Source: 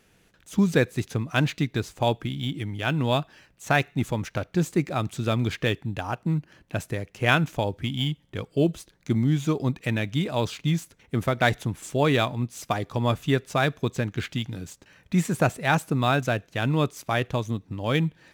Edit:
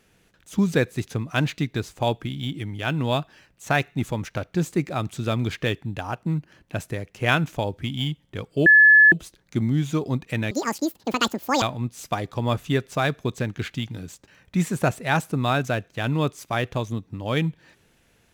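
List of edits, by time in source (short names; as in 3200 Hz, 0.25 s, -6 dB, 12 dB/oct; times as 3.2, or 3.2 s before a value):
8.66 add tone 1720 Hz -9 dBFS 0.46 s
10.05–12.2 speed 194%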